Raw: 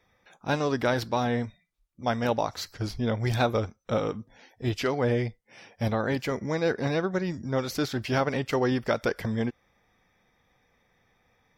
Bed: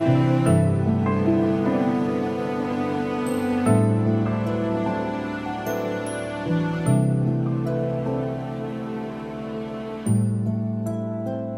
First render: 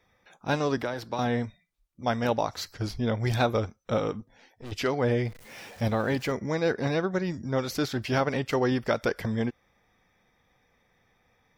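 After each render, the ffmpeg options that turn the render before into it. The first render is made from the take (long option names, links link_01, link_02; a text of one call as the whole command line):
ffmpeg -i in.wav -filter_complex "[0:a]asettb=1/sr,asplit=3[link_01][link_02][link_03];[link_01]atrim=end=0.774[link_04];[link_02]atrim=start=0.77:end=1.19,asetpts=PTS-STARTPTS,afade=type=in:duration=0.004:curve=qsin,afade=type=out:start_time=0.416:duration=0.004:curve=qsin,acrossover=split=340|1400[link_05][link_06][link_07];[link_05]acompressor=threshold=-40dB:ratio=4[link_08];[link_06]acompressor=threshold=-31dB:ratio=4[link_09];[link_07]acompressor=threshold=-41dB:ratio=4[link_10];[link_08][link_09][link_10]amix=inputs=3:normalize=0[link_11];[link_03]atrim=start=1.186[link_12];[link_04][link_11]acrossfade=duration=0.004:curve1=hsin:curve2=qsin[link_13];[link_13][link_12]acrossfade=duration=0.004:curve1=qsin:curve2=hsin,asettb=1/sr,asplit=3[link_14][link_15][link_16];[link_14]atrim=end=4.204[link_17];[link_15]atrim=start=4.2:end=4.72,asetpts=PTS-STARTPTS,afade=type=in:duration=0.004:curve=qsin,afade=type=out:start_time=0.516:duration=0.004:curve=qsin,aeval=exprs='(tanh(79.4*val(0)+0.6)-tanh(0.6))/79.4':channel_layout=same[link_18];[link_16]atrim=start=4.716[link_19];[link_17][link_18]acrossfade=duration=0.004:curve1=hsin:curve2=qsin[link_20];[link_20][link_19]acrossfade=duration=0.004:curve1=qsin:curve2=hsin,asettb=1/sr,asplit=3[link_21][link_22][link_23];[link_21]atrim=end=5.254[link_24];[link_22]atrim=start=5.25:end=6.32,asetpts=PTS-STARTPTS,afade=type=in:duration=0.004:curve=qsin,afade=type=out:start_time=1.066:duration=0.004:curve=qsin,aeval=exprs='val(0)+0.5*0.00668*sgn(val(0))':channel_layout=same[link_25];[link_23]atrim=start=6.316[link_26];[link_24][link_25]acrossfade=duration=0.004:curve1=hsin:curve2=qsin[link_27];[link_27][link_26]acrossfade=duration=0.004:curve1=qsin:curve2=hsin" out.wav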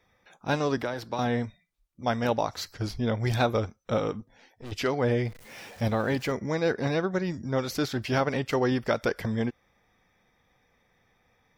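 ffmpeg -i in.wav -af anull out.wav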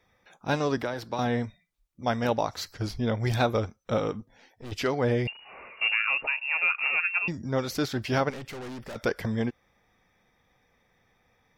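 ffmpeg -i in.wav -filter_complex "[0:a]asettb=1/sr,asplit=3[link_01][link_02][link_03];[link_01]atrim=end=5.274[link_04];[link_02]atrim=start=5.27:end=7.28,asetpts=PTS-STARTPTS,afade=type=in:duration=0.004:curve=qsin,afade=type=out:start_time=2.006:duration=0.004:curve=qsin,lowpass=frequency=2500:width_type=q:width=0.5098,lowpass=frequency=2500:width_type=q:width=0.6013,lowpass=frequency=2500:width_type=q:width=0.9,lowpass=frequency=2500:width_type=q:width=2.563,afreqshift=-2900[link_05];[link_03]atrim=start=7.276[link_06];[link_04][link_05]acrossfade=duration=0.004:curve1=hsin:curve2=qsin[link_07];[link_07][link_06]acrossfade=duration=0.004:curve1=qsin:curve2=hsin,asettb=1/sr,asplit=3[link_08][link_09][link_10];[link_08]atrim=end=8.304[link_11];[link_09]atrim=start=8.3:end=8.96,asetpts=PTS-STARTPTS,afade=type=in:duration=0.004:curve=qsin,afade=type=out:start_time=0.656:duration=0.004:curve=qsin,aeval=exprs='(tanh(70.8*val(0)+0.25)-tanh(0.25))/70.8':channel_layout=same[link_12];[link_10]atrim=start=8.956[link_13];[link_11][link_12]acrossfade=duration=0.004:curve1=hsin:curve2=qsin[link_14];[link_14][link_13]acrossfade=duration=0.004:curve1=qsin:curve2=hsin" out.wav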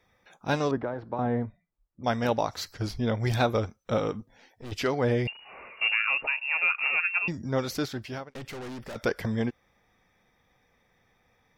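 ffmpeg -i in.wav -filter_complex "[0:a]asettb=1/sr,asplit=3[link_01][link_02][link_03];[link_01]atrim=end=0.714[link_04];[link_02]atrim=start=0.71:end=2.04,asetpts=PTS-STARTPTS,afade=type=in:duration=0.004:curve=qsin,afade=type=out:start_time=1.326:duration=0.004:curve=qsin,lowpass=1200[link_05];[link_03]atrim=start=2.036[link_06];[link_04][link_05]acrossfade=duration=0.004:curve1=hsin:curve2=qsin[link_07];[link_07][link_06]acrossfade=duration=0.004:curve1=qsin:curve2=hsin,asplit=2[link_08][link_09];[link_08]atrim=end=8.35,asetpts=PTS-STARTPTS,afade=type=out:start_time=7.68:duration=0.67[link_10];[link_09]atrim=start=8.35,asetpts=PTS-STARTPTS,afade=type=in:duration=0.004:curve=hsin[link_11];[link_10][link_11]concat=n=2:v=0:a=1" out.wav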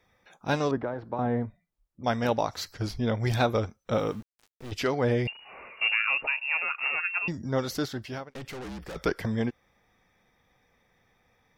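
ffmpeg -i in.wav -filter_complex "[0:a]asettb=1/sr,asplit=3[link_01][link_02][link_03];[link_01]atrim=end=3.944[link_04];[link_02]atrim=start=3.94:end=4.7,asetpts=PTS-STARTPTS,afade=type=in:duration=0.004:curve=qsin,afade=type=out:start_time=0.756:duration=0.004:curve=qsin,aeval=exprs='val(0)*gte(abs(val(0)),0.00398)':channel_layout=same[link_05];[link_03]atrim=start=4.696[link_06];[link_04][link_05]acrossfade=duration=0.004:curve1=hsin:curve2=qsin[link_07];[link_07][link_06]acrossfade=duration=0.004:curve1=qsin:curve2=hsin,asettb=1/sr,asplit=3[link_08][link_09][link_10];[link_08]atrim=end=6.624[link_11];[link_09]atrim=start=6.62:end=8.07,asetpts=PTS-STARTPTS,afade=type=in:duration=0.004:curve=qsin,afade=type=out:start_time=1.446:duration=0.004:curve=qsin,bandreject=frequency=2400:width=8.6[link_12];[link_10]atrim=start=8.066[link_13];[link_11][link_12]acrossfade=duration=0.004:curve1=hsin:curve2=qsin[link_14];[link_14][link_13]acrossfade=duration=0.004:curve1=qsin:curve2=hsin,asettb=1/sr,asplit=3[link_15][link_16][link_17];[link_15]atrim=end=8.644[link_18];[link_16]atrim=start=8.64:end=9.2,asetpts=PTS-STARTPTS,afade=type=in:duration=0.004:curve=qsin,afade=type=out:start_time=0.556:duration=0.004:curve=qsin,afreqshift=-54[link_19];[link_17]atrim=start=9.196[link_20];[link_18][link_19]acrossfade=duration=0.004:curve1=hsin:curve2=qsin[link_21];[link_21][link_20]acrossfade=duration=0.004:curve1=qsin:curve2=hsin" out.wav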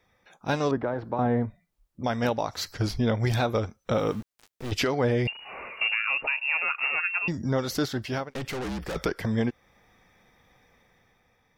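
ffmpeg -i in.wav -af "dynaudnorm=framelen=140:gausssize=11:maxgain=6.5dB,alimiter=limit=-15.5dB:level=0:latency=1:release=361" out.wav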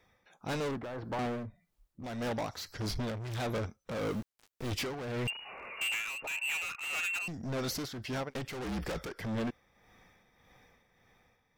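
ffmpeg -i in.wav -af "volume=31dB,asoftclip=hard,volume=-31dB,tremolo=f=1.7:d=0.57" out.wav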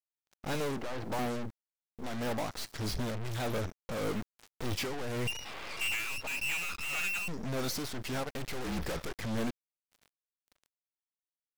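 ffmpeg -i in.wav -af "aeval=exprs='val(0)*gte(abs(val(0)),0.00224)':channel_layout=same,aeval=exprs='0.0299*(cos(1*acos(clip(val(0)/0.0299,-1,1)))-cos(1*PI/2))+0.0075*(cos(8*acos(clip(val(0)/0.0299,-1,1)))-cos(8*PI/2))':channel_layout=same" out.wav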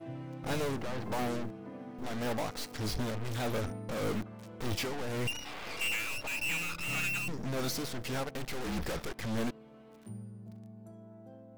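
ffmpeg -i in.wav -i bed.wav -filter_complex "[1:a]volume=-24dB[link_01];[0:a][link_01]amix=inputs=2:normalize=0" out.wav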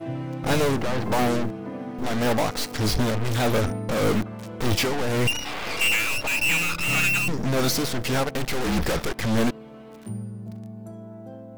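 ffmpeg -i in.wav -af "volume=11.5dB" out.wav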